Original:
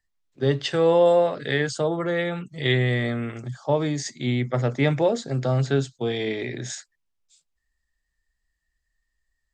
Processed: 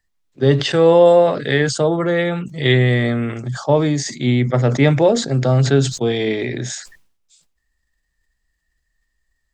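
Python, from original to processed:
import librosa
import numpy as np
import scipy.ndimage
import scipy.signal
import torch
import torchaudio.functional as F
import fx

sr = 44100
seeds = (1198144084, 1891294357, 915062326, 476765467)

y = fx.peak_eq(x, sr, hz=210.0, db=2.5, octaves=2.8)
y = fx.sustainer(y, sr, db_per_s=94.0)
y = y * librosa.db_to_amplitude(5.5)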